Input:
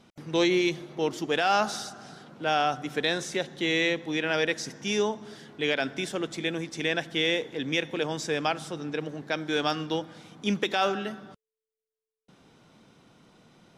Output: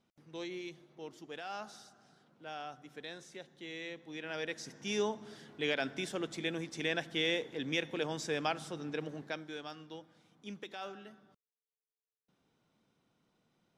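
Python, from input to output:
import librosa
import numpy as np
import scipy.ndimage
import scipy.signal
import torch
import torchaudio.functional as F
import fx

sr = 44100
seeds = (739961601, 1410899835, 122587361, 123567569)

y = fx.gain(x, sr, db=fx.line((3.8, -19.0), (5.04, -6.5), (9.2, -6.5), (9.62, -18.5)))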